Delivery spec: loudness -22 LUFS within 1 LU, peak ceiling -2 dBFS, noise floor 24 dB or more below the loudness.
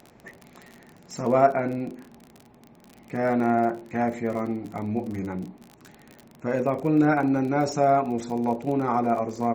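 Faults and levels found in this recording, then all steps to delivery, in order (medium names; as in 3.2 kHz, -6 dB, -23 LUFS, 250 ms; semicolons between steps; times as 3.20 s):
tick rate 39 per s; loudness -25.0 LUFS; peak level -6.0 dBFS; loudness target -22.0 LUFS
-> de-click; trim +3 dB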